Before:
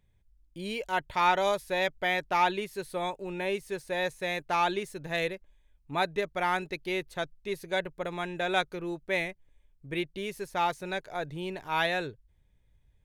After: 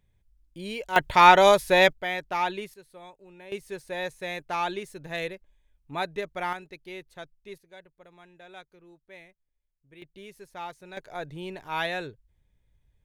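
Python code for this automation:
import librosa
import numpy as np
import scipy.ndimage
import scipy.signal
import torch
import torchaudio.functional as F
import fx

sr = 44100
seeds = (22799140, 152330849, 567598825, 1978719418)

y = fx.gain(x, sr, db=fx.steps((0.0, 0.0), (0.96, 10.0), (1.93, -2.0), (2.74, -14.5), (3.52, -2.0), (6.53, -9.0), (7.58, -19.0), (10.02, -10.0), (10.97, -1.5)))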